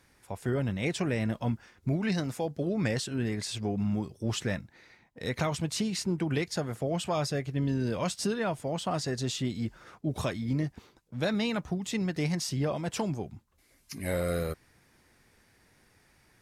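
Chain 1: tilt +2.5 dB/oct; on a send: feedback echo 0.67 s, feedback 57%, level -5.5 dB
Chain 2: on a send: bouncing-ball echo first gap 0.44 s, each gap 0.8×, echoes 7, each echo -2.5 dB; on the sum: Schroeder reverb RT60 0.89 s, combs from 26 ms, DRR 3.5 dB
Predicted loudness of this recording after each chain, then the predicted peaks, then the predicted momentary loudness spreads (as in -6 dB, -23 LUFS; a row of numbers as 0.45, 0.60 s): -31.5, -27.0 LUFS; -15.5, -12.5 dBFS; 9, 7 LU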